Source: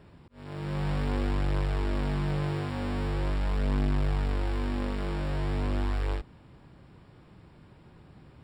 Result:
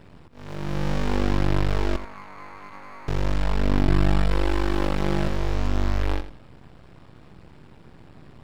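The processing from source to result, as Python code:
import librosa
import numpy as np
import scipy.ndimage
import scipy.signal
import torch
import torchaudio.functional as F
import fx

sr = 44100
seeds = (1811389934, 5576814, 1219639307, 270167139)

y = fx.bandpass_q(x, sr, hz=1100.0, q=3.7, at=(1.96, 3.08))
y = fx.comb(y, sr, ms=6.0, depth=0.93, at=(3.87, 5.28))
y = np.maximum(y, 0.0)
y = fx.echo_feedback(y, sr, ms=85, feedback_pct=23, wet_db=-12.5)
y = F.gain(torch.from_numpy(y), 8.5).numpy()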